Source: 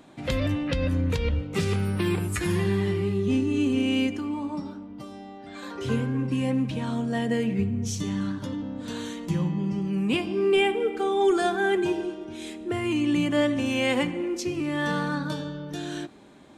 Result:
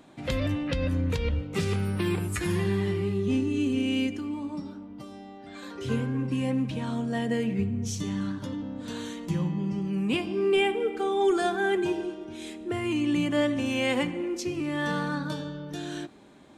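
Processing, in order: 3.48–5.91 s: dynamic bell 920 Hz, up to -5 dB, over -44 dBFS, Q 0.97; trim -2 dB

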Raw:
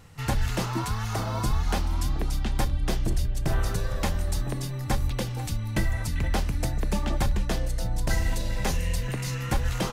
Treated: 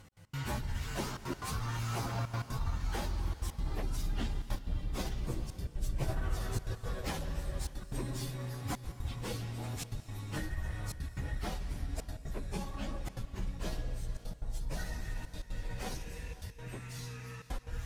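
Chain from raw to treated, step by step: Doppler pass-by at 2.92 s, 19 m/s, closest 18 m; compression 5:1, threshold -34 dBFS, peak gain reduction 12.5 dB; one-sided clip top -43 dBFS, bottom -29.5 dBFS; plain phase-vocoder stretch 1.8×; trance gate "x.x.xxxxxxxxx" 180 bpm -60 dB; reverberation, pre-delay 117 ms, DRR 12 dB; trim +7 dB

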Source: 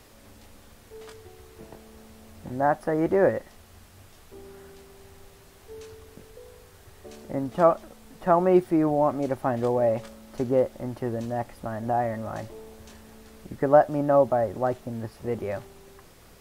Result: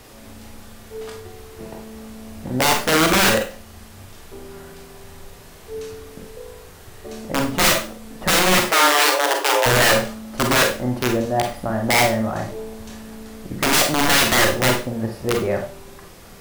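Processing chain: integer overflow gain 19.5 dB; 8.68–9.66 s: frequency shift +290 Hz; Schroeder reverb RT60 0.35 s, combs from 32 ms, DRR 2.5 dB; trim +7.5 dB

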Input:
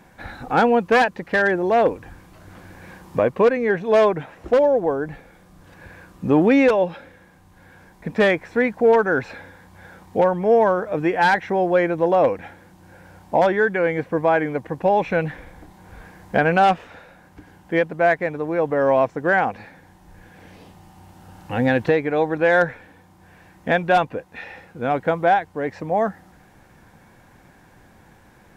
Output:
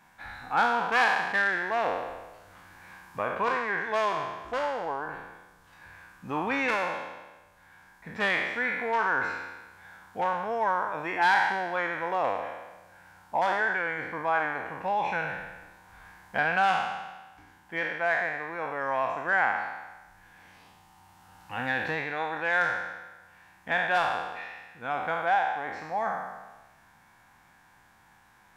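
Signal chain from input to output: spectral sustain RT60 1.20 s; resonant low shelf 680 Hz -9.5 dB, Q 1.5; trim -8 dB

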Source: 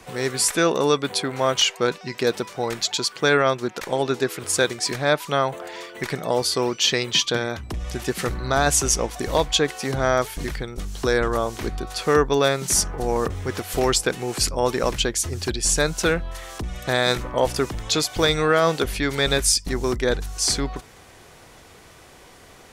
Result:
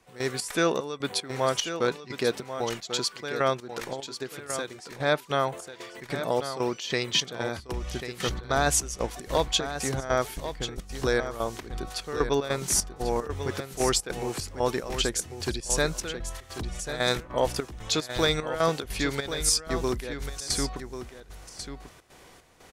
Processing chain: 3.79–4.89 s: compression 5:1, threshold -27 dBFS, peak gain reduction 11.5 dB; trance gate "..xx.xxx" 150 bpm -12 dB; delay 1091 ms -10 dB; trim -4.5 dB

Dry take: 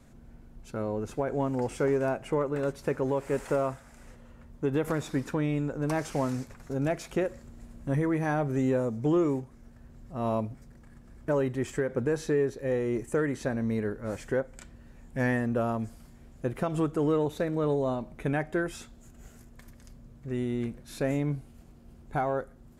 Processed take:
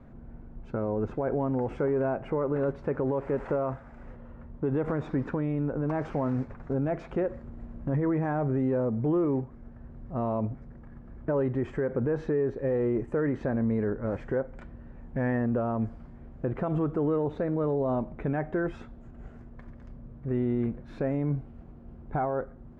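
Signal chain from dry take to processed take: low-pass 1.4 kHz 12 dB/octave; peak limiter -26 dBFS, peak gain reduction 7 dB; trim +5.5 dB

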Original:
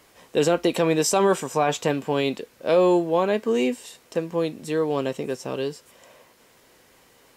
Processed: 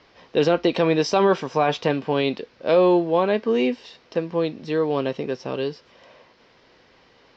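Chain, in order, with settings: steep low-pass 5.4 kHz 48 dB/octave; trim +1.5 dB

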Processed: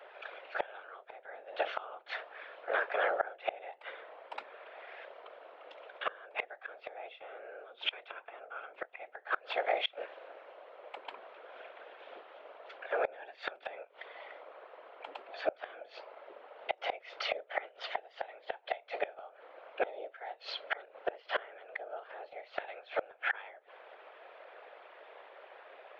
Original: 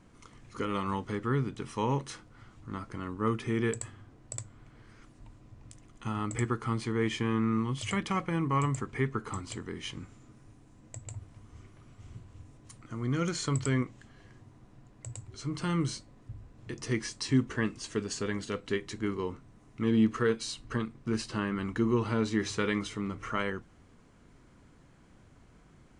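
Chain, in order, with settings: mistuned SSB +300 Hz 250–3200 Hz; whisper effect; inverted gate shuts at -29 dBFS, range -26 dB; trim +10.5 dB

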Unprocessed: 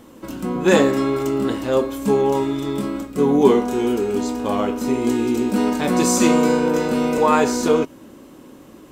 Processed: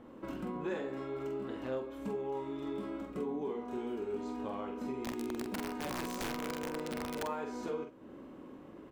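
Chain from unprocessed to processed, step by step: tone controls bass -3 dB, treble -15 dB; compression 6:1, threshold -30 dBFS, peak gain reduction 20 dB; 5.00–7.23 s: integer overflow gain 24 dB; doubling 46 ms -5.5 dB; reverberation RT60 0.70 s, pre-delay 30 ms, DRR 18.5 dB; tape noise reduction on one side only decoder only; trim -7 dB

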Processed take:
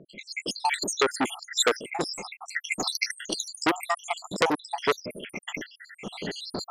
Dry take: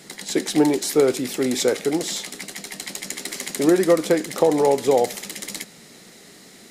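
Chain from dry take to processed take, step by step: random holes in the spectrogram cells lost 84%; recorder AGC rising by 14 dB/s; level-controlled noise filter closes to 2.4 kHz, open at -17.5 dBFS; 1.07–1.92 s: dynamic bell 320 Hz, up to +8 dB, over -38 dBFS, Q 2; transformer saturation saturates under 3.6 kHz; trim +1 dB

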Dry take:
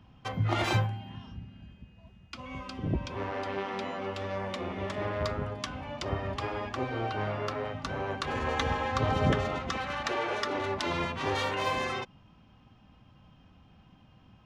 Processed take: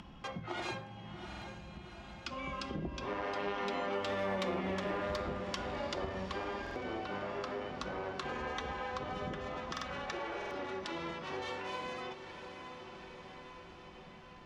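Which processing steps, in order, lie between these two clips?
Doppler pass-by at 4.38 s, 10 m/s, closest 3.7 m; on a send: echo that smears into a reverb 737 ms, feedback 45%, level -14 dB; on the sum: upward compressor, threshold -57 dBFS; low-pass 8.7 kHz; in parallel at -9.5 dB: wavefolder -32.5 dBFS; on the sum: simulated room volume 2500 m³, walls furnished, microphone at 0.87 m; compression 4:1, threshold -50 dBFS, peak gain reduction 17 dB; peaking EQ 110 Hz -13.5 dB 0.56 oct; buffer glitch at 1.28/6.62/9.72/10.37 s, samples 2048, times 2; trim +14.5 dB

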